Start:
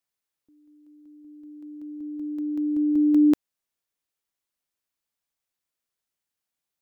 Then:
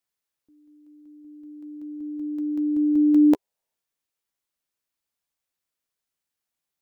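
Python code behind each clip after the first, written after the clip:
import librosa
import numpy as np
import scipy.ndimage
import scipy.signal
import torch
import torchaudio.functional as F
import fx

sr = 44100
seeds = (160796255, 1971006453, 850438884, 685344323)

y = fx.spec_box(x, sr, start_s=3.29, length_s=0.47, low_hz=390.0, high_hz=1000.0, gain_db=8)
y = fx.doubler(y, sr, ms=13.0, db=-11.5)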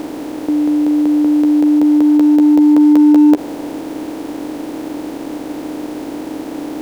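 y = fx.bin_compress(x, sr, power=0.2)
y = fx.leveller(y, sr, passes=1)
y = y * librosa.db_to_amplitude(5.0)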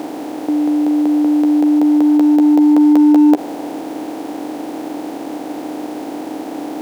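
y = scipy.signal.sosfilt(scipy.signal.butter(2, 160.0, 'highpass', fs=sr, output='sos'), x)
y = fx.peak_eq(y, sr, hz=750.0, db=7.5, octaves=0.37)
y = y * librosa.db_to_amplitude(-1.0)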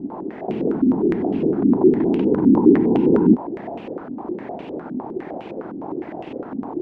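y = fx.whisperise(x, sr, seeds[0])
y = fx.filter_held_lowpass(y, sr, hz=9.8, low_hz=260.0, high_hz=2700.0)
y = y * librosa.db_to_amplitude(-9.0)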